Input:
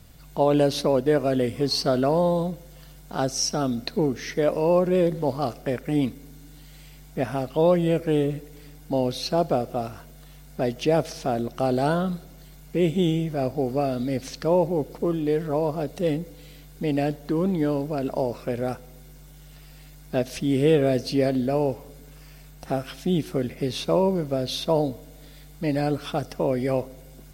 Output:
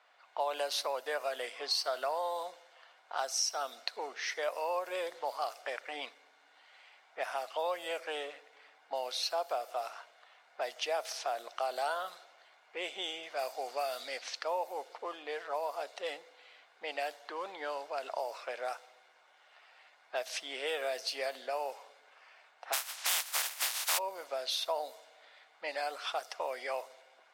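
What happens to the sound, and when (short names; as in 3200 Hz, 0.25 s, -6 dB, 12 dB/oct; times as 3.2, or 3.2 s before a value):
13.23–14.19 high shelf 3500 Hz +8 dB
22.72–23.97 spectral contrast lowered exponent 0.16
whole clip: HPF 720 Hz 24 dB/oct; low-pass opened by the level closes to 1900 Hz, open at -28.5 dBFS; compressor 2:1, threshold -34 dBFS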